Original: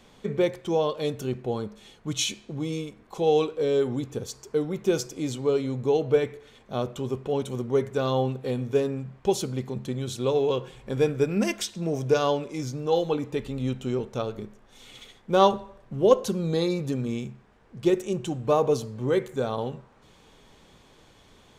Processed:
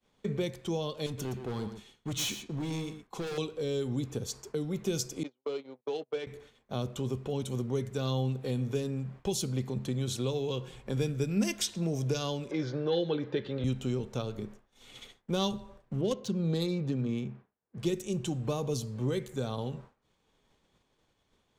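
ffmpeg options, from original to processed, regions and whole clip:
ffmpeg -i in.wav -filter_complex "[0:a]asettb=1/sr,asplit=3[link_01][link_02][link_03];[link_01]atrim=end=1.064[link_04];[link_02]atrim=start=1.06:end=3.38,asetpts=PTS-STARTPTS,afade=type=in:duration=0.004:curve=qsin,afade=type=out:start_time=2.316:duration=0.004:curve=qsin,equalizer=frequency=580:width_type=o:width=0.65:gain=-6,volume=30dB,asoftclip=hard,volume=-30dB,aecho=1:1:118:0.282,atrim=end_sample=102312[link_05];[link_03]atrim=start=3.376[link_06];[link_04][link_05]acrossfade=duration=0.004:curve1=hsin:curve2=qsin[link_07];[link_07][link_06]acrossfade=duration=0.004:curve1=qsin:curve2=hsin,asettb=1/sr,asplit=3[link_08][link_09][link_10];[link_08]atrim=end=5.234[link_11];[link_09]atrim=start=5.23:end=6.27,asetpts=PTS-STARTPTS,afade=type=in:duration=0.004:curve=qsin,afade=type=out:start_time=1.036:duration=0.004:curve=qsin,agate=range=-36dB:threshold=-28dB:ratio=16:release=100:detection=peak,adynamicsmooth=sensitivity=8:basefreq=2600,highpass=430,lowpass=5100[link_12];[link_10]atrim=start=6.266[link_13];[link_11][link_12]acrossfade=duration=0.004:curve1=hsin:curve2=qsin[link_14];[link_14][link_13]acrossfade=duration=0.004:curve1=qsin:curve2=hsin,asettb=1/sr,asplit=3[link_15][link_16][link_17];[link_15]atrim=end=12.514[link_18];[link_16]atrim=start=12.51:end=13.64,asetpts=PTS-STARTPTS,afade=type=in:duration=0.004:curve=qsin,afade=type=out:start_time=1.126:duration=0.004:curve=qsin,acontrast=87,highpass=230,equalizer=frequency=250:width_type=q:width=4:gain=-9,equalizer=frequency=360:width_type=q:width=4:gain=6,equalizer=frequency=550:width_type=q:width=4:gain=7,equalizer=frequency=1600:width_type=q:width=4:gain=10,equalizer=frequency=2600:width_type=q:width=4:gain=-7,lowpass=frequency=3600:width=0.5412,lowpass=frequency=3600:width=1.3066[link_19];[link_17]atrim=start=13.636[link_20];[link_18][link_19]acrossfade=duration=0.004:curve1=hsin:curve2=qsin[link_21];[link_21][link_20]acrossfade=duration=0.004:curve1=qsin:curve2=hsin,asettb=1/sr,asplit=3[link_22][link_23][link_24];[link_22]atrim=end=16.014[link_25];[link_23]atrim=start=16.01:end=17.78,asetpts=PTS-STARTPTS,afade=type=in:duration=0.004:curve=qsin,afade=type=out:start_time=1.766:duration=0.004:curve=qsin,highpass=98,adynamicsmooth=sensitivity=4:basefreq=2900[link_26];[link_24]atrim=start=17.776[link_27];[link_25][link_26]acrossfade=duration=0.004:curve1=hsin:curve2=qsin[link_28];[link_28][link_27]acrossfade=duration=0.004:curve1=qsin:curve2=hsin,agate=range=-33dB:threshold=-43dB:ratio=3:detection=peak,acrossover=split=230|3000[link_29][link_30][link_31];[link_30]acompressor=threshold=-36dB:ratio=4[link_32];[link_29][link_32][link_31]amix=inputs=3:normalize=0" out.wav

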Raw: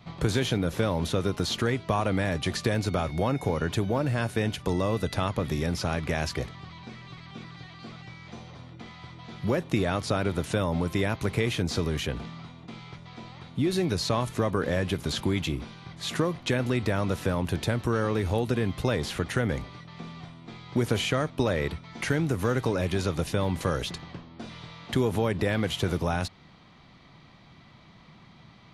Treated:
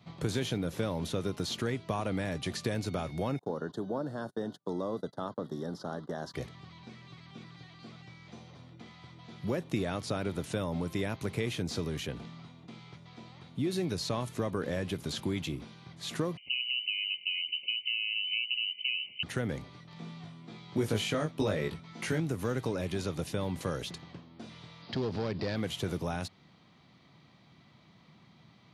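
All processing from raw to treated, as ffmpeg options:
ffmpeg -i in.wav -filter_complex "[0:a]asettb=1/sr,asplit=3[link_01][link_02][link_03];[link_01]atrim=end=3.394[link_04];[link_02]atrim=start=3.39:end=6.34,asetpts=PTS-STARTPTS,afade=type=in:duration=0.004:curve=qsin,afade=type=out:start_time=2.946:duration=0.004:curve=qsin,agate=range=-33dB:threshold=-34dB:ratio=16:release=100:detection=peak,asuperstop=centerf=2400:order=4:qfactor=1.1,acrossover=split=160 4000:gain=0.0708 1 0.224[link_05][link_06][link_07];[link_05][link_06][link_07]amix=inputs=3:normalize=0[link_08];[link_03]atrim=start=6.336[link_09];[link_04][link_08]acrossfade=duration=0.004:curve1=hsin:curve2=qsin[link_10];[link_10][link_09]acrossfade=duration=0.004:curve1=qsin:curve2=hsin,asettb=1/sr,asplit=3[link_11][link_12][link_13];[link_11]atrim=end=16.374[link_14];[link_12]atrim=start=16.37:end=19.23,asetpts=PTS-STARTPTS,afade=type=in:duration=0.004:curve=qsin,afade=type=out:start_time=2.856:duration=0.004:curve=qsin,asuperstop=centerf=1800:order=20:qfactor=0.82,lowpass=frequency=2600:width_type=q:width=0.5098,lowpass=frequency=2600:width_type=q:width=0.6013,lowpass=frequency=2600:width_type=q:width=0.9,lowpass=frequency=2600:width_type=q:width=2.563,afreqshift=-3100[link_15];[link_13]atrim=start=19.226[link_16];[link_14][link_15]acrossfade=duration=0.004:curve1=hsin:curve2=qsin[link_17];[link_17][link_16]acrossfade=duration=0.004:curve1=qsin:curve2=hsin,asettb=1/sr,asplit=3[link_18][link_19][link_20];[link_18]atrim=end=19.914[link_21];[link_19]atrim=start=19.91:end=22.2,asetpts=PTS-STARTPTS,afade=type=in:duration=0.004:curve=qsin,afade=type=out:start_time=2.286:duration=0.004:curve=qsin,acompressor=mode=upward:threshold=-42dB:ratio=2.5:attack=3.2:release=140:knee=2.83:detection=peak,asplit=2[link_22][link_23];[link_23]adelay=19,volume=-3dB[link_24];[link_22][link_24]amix=inputs=2:normalize=0,atrim=end_sample=100989[link_25];[link_20]atrim=start=22.196[link_26];[link_21][link_25]acrossfade=duration=0.004:curve1=hsin:curve2=qsin[link_27];[link_27][link_26]acrossfade=duration=0.004:curve1=qsin:curve2=hsin,asettb=1/sr,asplit=3[link_28][link_29][link_30];[link_28]atrim=end=24.824[link_31];[link_29]atrim=start=24.82:end=25.56,asetpts=PTS-STARTPTS,afade=type=in:duration=0.004:curve=qsin,afade=type=out:start_time=0.736:duration=0.004:curve=qsin,aemphasis=mode=reproduction:type=75fm,volume=21.5dB,asoftclip=hard,volume=-21.5dB,lowpass=frequency=4800:width_type=q:width=6.7[link_32];[link_30]atrim=start=25.556[link_33];[link_31][link_32]acrossfade=duration=0.004:curve1=hsin:curve2=qsin[link_34];[link_34][link_33]acrossfade=duration=0.004:curve1=qsin:curve2=hsin,highpass=100,equalizer=frequency=1300:width_type=o:width=2.3:gain=-3.5,volume=-5dB" out.wav

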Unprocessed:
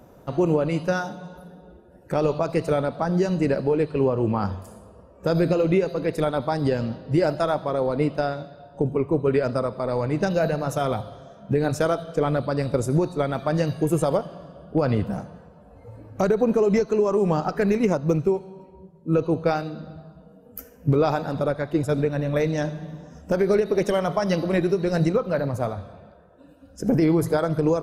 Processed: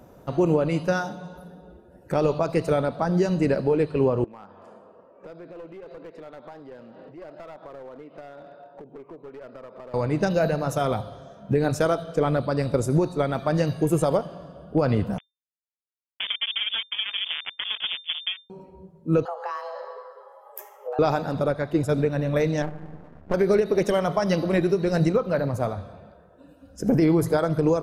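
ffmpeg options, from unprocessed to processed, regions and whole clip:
ffmpeg -i in.wav -filter_complex "[0:a]asettb=1/sr,asplit=3[link_01][link_02][link_03];[link_01]atrim=end=4.244[link_04];[link_02]atrim=start=4.24:end=9.94,asetpts=PTS-STARTPTS,afade=type=in:duration=0.004:curve=qsin,afade=type=out:start_time=5.696:duration=0.004:curve=qsin,acompressor=threshold=-35dB:ratio=8:attack=3.2:release=140:knee=1:detection=peak,highpass=320,lowpass=2500,aeval=exprs='clip(val(0),-1,0.0106)':channel_layout=same[link_05];[link_03]atrim=start=9.936[link_06];[link_04][link_05]acrossfade=duration=0.004:curve1=hsin:curve2=qsin[link_07];[link_07][link_06]acrossfade=duration=0.004:curve1=qsin:curve2=hsin,asettb=1/sr,asplit=3[link_08][link_09][link_10];[link_08]atrim=end=15.184[link_11];[link_09]atrim=start=15.18:end=18.5,asetpts=PTS-STARTPTS,afade=type=in:duration=0.004:curve=qsin,afade=type=out:start_time=3.316:duration=0.004:curve=qsin,acompressor=threshold=-38dB:ratio=1.5:attack=3.2:release=140:knee=1:detection=peak,acrusher=bits=3:mix=0:aa=0.5,lowpass=frequency=3100:width_type=q:width=0.5098,lowpass=frequency=3100:width_type=q:width=0.6013,lowpass=frequency=3100:width_type=q:width=0.9,lowpass=frequency=3100:width_type=q:width=2.563,afreqshift=-3600[link_12];[link_10]atrim=start=18.496[link_13];[link_11][link_12]acrossfade=duration=0.004:curve1=hsin:curve2=qsin[link_14];[link_14][link_13]acrossfade=duration=0.004:curve1=qsin:curve2=hsin,asettb=1/sr,asplit=3[link_15][link_16][link_17];[link_15]atrim=end=19.254[link_18];[link_16]atrim=start=19.25:end=20.99,asetpts=PTS-STARTPTS,afade=type=in:duration=0.004:curve=qsin,afade=type=out:start_time=1.736:duration=0.004:curve=qsin,equalizer=frequency=880:width_type=o:width=0.41:gain=13.5,acompressor=threshold=-30dB:ratio=4:attack=3.2:release=140:knee=1:detection=peak,afreqshift=350[link_19];[link_17]atrim=start=20.986[link_20];[link_18][link_19]acrossfade=duration=0.004:curve1=hsin:curve2=qsin[link_21];[link_21][link_20]acrossfade=duration=0.004:curve1=qsin:curve2=hsin,asettb=1/sr,asplit=3[link_22][link_23][link_24];[link_22]atrim=end=22.624[link_25];[link_23]atrim=start=22.62:end=23.34,asetpts=PTS-STARTPTS,afade=type=in:duration=0.004:curve=qsin,afade=type=out:start_time=0.716:duration=0.004:curve=qsin,lowpass=frequency=2000:width=0.5412,lowpass=frequency=2000:width=1.3066,aeval=exprs='max(val(0),0)':channel_layout=same[link_26];[link_24]atrim=start=23.336[link_27];[link_25][link_26]acrossfade=duration=0.004:curve1=hsin:curve2=qsin[link_28];[link_28][link_27]acrossfade=duration=0.004:curve1=qsin:curve2=hsin" out.wav

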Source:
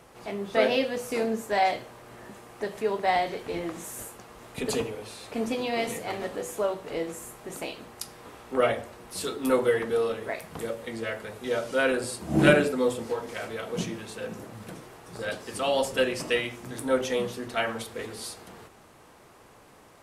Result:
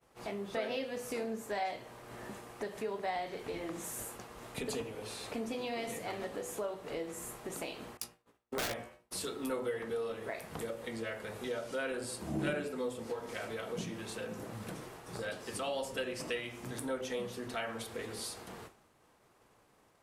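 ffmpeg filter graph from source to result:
ffmpeg -i in.wav -filter_complex "[0:a]asettb=1/sr,asplit=3[link_01][link_02][link_03];[link_01]atrim=end=7.974[link_04];[link_02]atrim=start=7.97:end=9.11,asetpts=PTS-STARTPTS,afade=type=in:duration=0.004:curve=qsin,afade=type=out:start_time=1.136:duration=0.004:curve=qsin,agate=range=-33dB:threshold=-38dB:ratio=3:release=100:detection=peak,aeval=exprs='(mod(8.41*val(0)+1,2)-1)/8.41':channel_layout=same,asplit=2[link_05][link_06];[link_06]adelay=17,volume=-5dB[link_07];[link_05][link_07]amix=inputs=2:normalize=0,atrim=end_sample=50274[link_08];[link_03]atrim=start=9.106[link_09];[link_04][link_08]acrossfade=duration=0.004:curve1=hsin:curve2=qsin[link_10];[link_10][link_09]acrossfade=duration=0.004:curve1=qsin:curve2=hsin,bandreject=frequency=85.91:width_type=h:width=4,bandreject=frequency=171.82:width_type=h:width=4,bandreject=frequency=257.73:width_type=h:width=4,bandreject=frequency=343.64:width_type=h:width=4,bandreject=frequency=429.55:width_type=h:width=4,bandreject=frequency=515.46:width_type=h:width=4,bandreject=frequency=601.37:width_type=h:width=4,bandreject=frequency=687.28:width_type=h:width=4,bandreject=frequency=773.19:width_type=h:width=4,bandreject=frequency=859.1:width_type=h:width=4,bandreject=frequency=945.01:width_type=h:width=4,bandreject=frequency=1030.92:width_type=h:width=4,bandreject=frequency=1116.83:width_type=h:width=4,bandreject=frequency=1202.74:width_type=h:width=4,bandreject=frequency=1288.65:width_type=h:width=4,bandreject=frequency=1374.56:width_type=h:width=4,bandreject=frequency=1460.47:width_type=h:width=4,bandreject=frequency=1546.38:width_type=h:width=4,bandreject=frequency=1632.29:width_type=h:width=4,bandreject=frequency=1718.2:width_type=h:width=4,bandreject=frequency=1804.11:width_type=h:width=4,bandreject=frequency=1890.02:width_type=h:width=4,bandreject=frequency=1975.93:width_type=h:width=4,bandreject=frequency=2061.84:width_type=h:width=4,bandreject=frequency=2147.75:width_type=h:width=4,bandreject=frequency=2233.66:width_type=h:width=4,bandreject=frequency=2319.57:width_type=h:width=4,bandreject=frequency=2405.48:width_type=h:width=4,bandreject=frequency=2491.39:width_type=h:width=4,bandreject=frequency=2577.3:width_type=h:width=4,bandreject=frequency=2663.21:width_type=h:width=4,bandreject=frequency=2749.12:width_type=h:width=4,bandreject=frequency=2835.03:width_type=h:width=4,bandreject=frequency=2920.94:width_type=h:width=4,bandreject=frequency=3006.85:width_type=h:width=4,bandreject=frequency=3092.76:width_type=h:width=4,bandreject=frequency=3178.67:width_type=h:width=4,agate=range=-33dB:threshold=-44dB:ratio=3:detection=peak,acompressor=threshold=-41dB:ratio=2.5,volume=1dB" out.wav

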